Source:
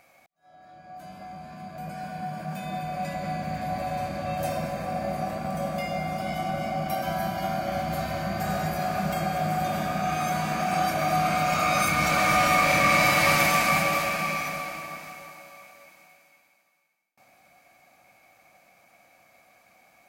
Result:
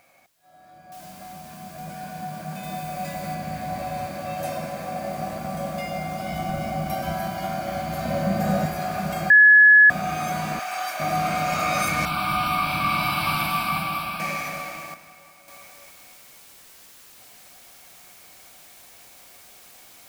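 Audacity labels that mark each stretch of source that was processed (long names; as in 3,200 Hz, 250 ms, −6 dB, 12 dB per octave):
0.920000	0.920000	noise floor change −69 dB −49 dB
2.630000	3.350000	high-shelf EQ 6,200 Hz +5.5 dB
4.070000	5.180000	low-shelf EQ 86 Hz −11 dB
6.320000	7.160000	low-shelf EQ 120 Hz +10 dB
8.050000	8.660000	hollow resonant body resonances 210/530 Hz, height 10 dB, ringing for 25 ms
9.300000	9.900000	beep over 1,700 Hz −8.5 dBFS
10.590000	11.000000	high-pass filter 890 Hz
12.050000	14.200000	phaser with its sweep stopped centre 1,900 Hz, stages 6
14.940000	15.480000	clip gain −7.5 dB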